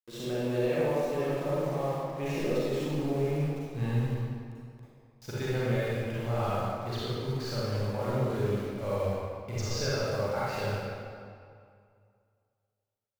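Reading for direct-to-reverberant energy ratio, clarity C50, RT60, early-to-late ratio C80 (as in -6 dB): -9.0 dB, -6.5 dB, 2.3 s, -2.5 dB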